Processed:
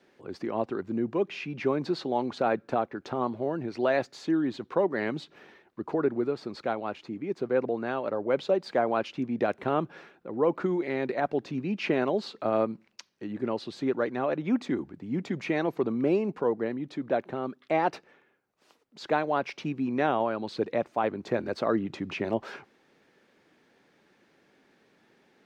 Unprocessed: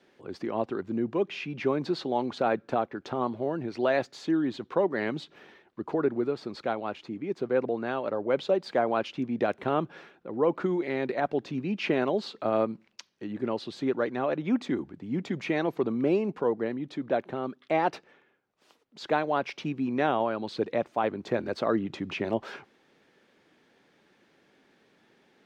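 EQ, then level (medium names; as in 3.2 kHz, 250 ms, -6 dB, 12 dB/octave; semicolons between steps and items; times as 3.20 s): peaking EQ 3.3 kHz -3 dB 0.39 oct; 0.0 dB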